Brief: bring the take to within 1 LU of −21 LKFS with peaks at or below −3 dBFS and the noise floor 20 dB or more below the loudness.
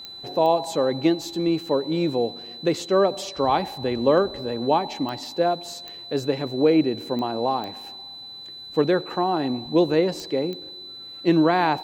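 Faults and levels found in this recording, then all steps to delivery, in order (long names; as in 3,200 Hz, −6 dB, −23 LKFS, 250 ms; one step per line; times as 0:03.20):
number of clicks 8; interfering tone 4,000 Hz; level of the tone −37 dBFS; integrated loudness −23.5 LKFS; sample peak −6.5 dBFS; target loudness −21.0 LKFS
→ click removal
notch filter 4,000 Hz, Q 30
level +2.5 dB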